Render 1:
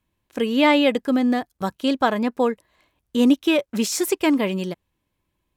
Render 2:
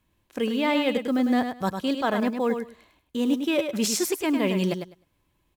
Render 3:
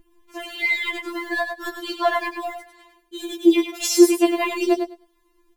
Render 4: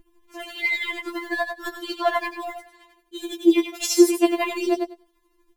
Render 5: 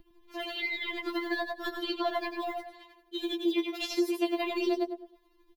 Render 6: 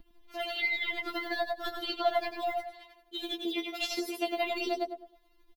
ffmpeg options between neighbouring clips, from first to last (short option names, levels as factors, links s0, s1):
-af "areverse,acompressor=threshold=0.0501:ratio=6,areverse,acrusher=bits=9:mode=log:mix=0:aa=0.000001,aecho=1:1:102|204|306:0.447|0.0715|0.0114,volume=1.58"
-af "lowshelf=f=440:g=7,aeval=exprs='val(0)+0.00562*(sin(2*PI*60*n/s)+sin(2*PI*2*60*n/s)/2+sin(2*PI*3*60*n/s)/3+sin(2*PI*4*60*n/s)/4+sin(2*PI*5*60*n/s)/5)':c=same,afftfilt=real='re*4*eq(mod(b,16),0)':imag='im*4*eq(mod(b,16),0)':win_size=2048:overlap=0.75,volume=2.11"
-af "tremolo=f=12:d=0.44"
-filter_complex "[0:a]equalizer=f=500:t=o:w=1:g=4,equalizer=f=4000:t=o:w=1:g=9,equalizer=f=8000:t=o:w=1:g=-12,acrossover=split=450|3200[s0][s1][s2];[s0]acompressor=threshold=0.0316:ratio=4[s3];[s1]acompressor=threshold=0.0251:ratio=4[s4];[s2]acompressor=threshold=0.00891:ratio=4[s5];[s3][s4][s5]amix=inputs=3:normalize=0,asplit=2[s6][s7];[s7]adelay=105,lowpass=f=2000:p=1,volume=0.282,asplit=2[s8][s9];[s9]adelay=105,lowpass=f=2000:p=1,volume=0.29,asplit=2[s10][s11];[s11]adelay=105,lowpass=f=2000:p=1,volume=0.29[s12];[s8][s10][s12]amix=inputs=3:normalize=0[s13];[s6][s13]amix=inputs=2:normalize=0,volume=0.75"
-af "aecho=1:1:4.3:0.61"